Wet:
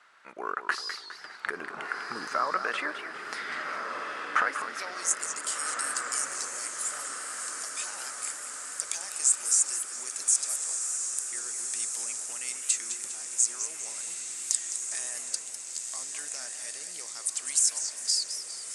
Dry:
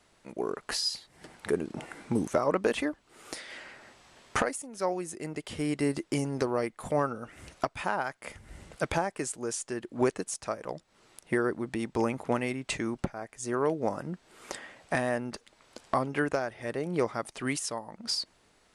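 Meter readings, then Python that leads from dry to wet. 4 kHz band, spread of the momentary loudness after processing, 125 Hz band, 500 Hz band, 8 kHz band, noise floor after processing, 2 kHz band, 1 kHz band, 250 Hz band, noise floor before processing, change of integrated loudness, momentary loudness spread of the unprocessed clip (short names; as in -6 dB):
+2.5 dB, 11 LU, under -25 dB, -13.5 dB, +15.0 dB, -43 dBFS, +3.0 dB, -0.5 dB, -19.0 dB, -66 dBFS, +2.5 dB, 13 LU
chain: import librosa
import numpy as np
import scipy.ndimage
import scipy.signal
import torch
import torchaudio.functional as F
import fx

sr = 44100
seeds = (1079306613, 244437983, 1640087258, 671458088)

p1 = fx.high_shelf(x, sr, hz=2900.0, db=11.0)
p2 = fx.over_compress(p1, sr, threshold_db=-31.0, ratio=-1.0)
p3 = p1 + (p2 * librosa.db_to_amplitude(1.0))
p4 = fx.filter_sweep_bandpass(p3, sr, from_hz=1400.0, to_hz=7700.0, start_s=4.63, end_s=5.13, q=3.1)
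p5 = p4 + fx.echo_diffused(p4, sr, ms=1480, feedback_pct=56, wet_db=-5.5, dry=0)
p6 = fx.echo_warbled(p5, sr, ms=203, feedback_pct=47, rate_hz=2.8, cents=218, wet_db=-9.5)
y = p6 * librosa.db_to_amplitude(3.5)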